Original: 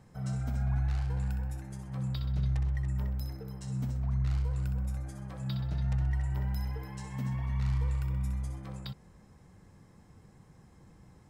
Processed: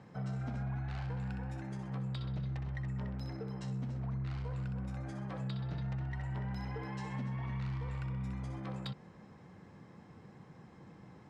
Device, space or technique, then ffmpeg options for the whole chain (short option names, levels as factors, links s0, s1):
AM radio: -af "highpass=140,lowpass=3800,acompressor=threshold=0.0126:ratio=6,asoftclip=type=tanh:threshold=0.0158,volume=1.78"